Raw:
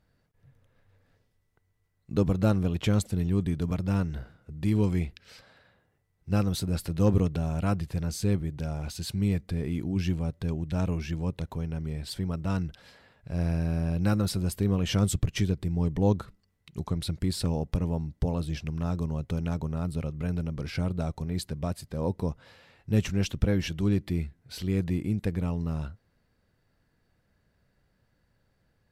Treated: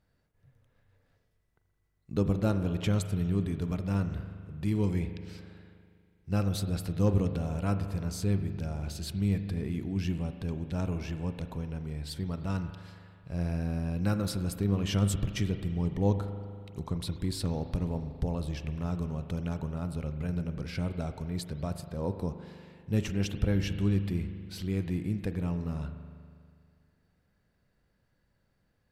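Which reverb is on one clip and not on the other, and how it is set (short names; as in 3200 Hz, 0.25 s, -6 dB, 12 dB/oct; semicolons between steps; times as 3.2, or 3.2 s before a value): spring tank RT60 2.2 s, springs 40 ms, chirp 65 ms, DRR 8.5 dB; gain -3.5 dB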